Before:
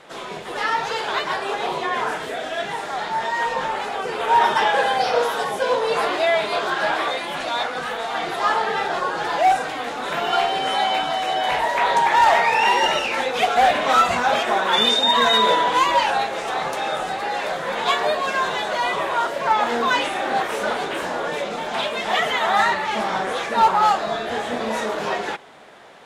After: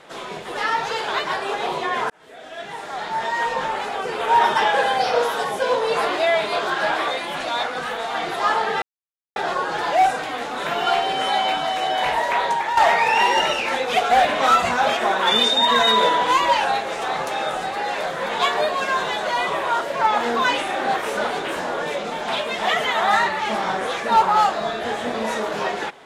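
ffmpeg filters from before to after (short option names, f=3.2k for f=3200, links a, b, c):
-filter_complex "[0:a]asplit=4[a][b][c][d];[a]atrim=end=2.1,asetpts=PTS-STARTPTS,afade=t=out:st=2.096:d=0.004:c=hsin[e];[b]atrim=start=2.1:end=8.82,asetpts=PTS-STARTPTS,afade=t=in:d=1.18,afade=t=out:st=6.716:d=0.004:c=hsin,apad=pad_dur=0.54[f];[c]atrim=start=8.82:end=12.23,asetpts=PTS-STARTPTS,afade=t=in:d=0.004:c=hsin,afade=t=out:st=2.89:d=0.52:silence=0.334965[g];[d]atrim=start=12.23,asetpts=PTS-STARTPTS,afade=t=in:d=0.004:c=hsin:silence=0.334965[h];[e][f][g][h]concat=n=4:v=0:a=1"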